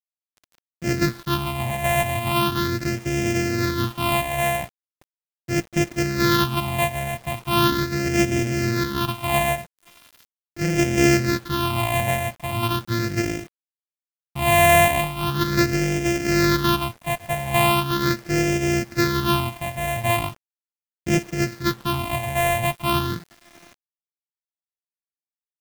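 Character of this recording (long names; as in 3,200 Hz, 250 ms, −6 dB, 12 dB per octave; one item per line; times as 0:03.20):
a buzz of ramps at a fixed pitch in blocks of 128 samples
phaser sweep stages 6, 0.39 Hz, lowest notch 340–1,100 Hz
a quantiser's noise floor 8 bits, dither none
tremolo triangle 1.1 Hz, depth 35%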